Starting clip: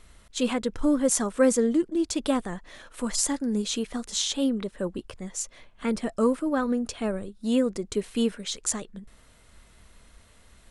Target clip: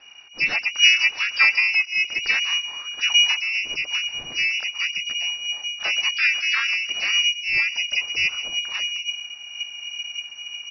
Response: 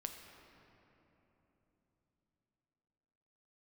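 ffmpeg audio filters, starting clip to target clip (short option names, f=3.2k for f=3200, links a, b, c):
-filter_complex "[0:a]asubboost=boost=7.5:cutoff=70,asplit=2[a][b];[b]adelay=124,lowpass=f=2.3k:p=1,volume=-20.5dB,asplit=2[c][d];[d]adelay=124,lowpass=f=2.3k:p=1,volume=0.23[e];[a][c][e]amix=inputs=3:normalize=0,lowpass=f=2.5k:t=q:w=0.5098,lowpass=f=2.5k:t=q:w=0.6013,lowpass=f=2.5k:t=q:w=0.9,lowpass=f=2.5k:t=q:w=2.563,afreqshift=-2900,asplit=4[f][g][h][i];[g]asetrate=35002,aresample=44100,atempo=1.25992,volume=-13dB[j];[h]asetrate=37084,aresample=44100,atempo=1.18921,volume=-7dB[k];[i]asetrate=88200,aresample=44100,atempo=0.5,volume=-13dB[l];[f][j][k][l]amix=inputs=4:normalize=0,volume=3dB"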